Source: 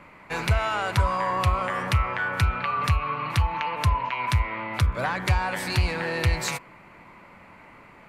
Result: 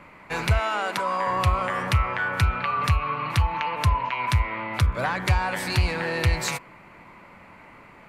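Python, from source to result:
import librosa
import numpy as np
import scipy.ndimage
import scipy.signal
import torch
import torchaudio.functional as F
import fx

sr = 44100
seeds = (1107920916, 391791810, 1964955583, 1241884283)

y = fx.cheby1_highpass(x, sr, hz=200.0, order=4, at=(0.6, 1.27))
y = y * 10.0 ** (1.0 / 20.0)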